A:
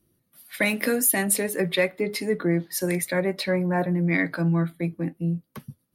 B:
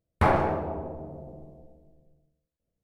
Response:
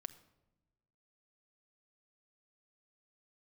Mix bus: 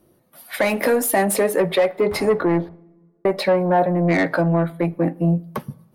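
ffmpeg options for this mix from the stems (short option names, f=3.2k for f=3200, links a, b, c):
-filter_complex "[0:a]asoftclip=type=tanh:threshold=-20dB,acontrast=81,equalizer=f=690:t=o:w=2:g=15,volume=-4.5dB,asplit=3[a][b][c];[a]atrim=end=2.69,asetpts=PTS-STARTPTS,afade=t=out:st=2.686:d=0.004:c=hsin[d];[b]atrim=start=2.69:end=3.25,asetpts=PTS-STARTPTS,volume=0[e];[c]atrim=start=3.25,asetpts=PTS-STARTPTS,afade=t=in:d=0.004:c=hsin[f];[d][e][f]concat=n=3:v=0:a=1,asplit=3[g][h][i];[h]volume=-3.5dB[j];[1:a]adelay=1900,volume=-11dB[k];[i]apad=whole_len=208807[l];[k][l]sidechaingate=range=-33dB:threshold=-35dB:ratio=16:detection=peak[m];[2:a]atrim=start_sample=2205[n];[j][n]afir=irnorm=-1:irlink=0[o];[g][m][o]amix=inputs=3:normalize=0,alimiter=limit=-9dB:level=0:latency=1:release=468"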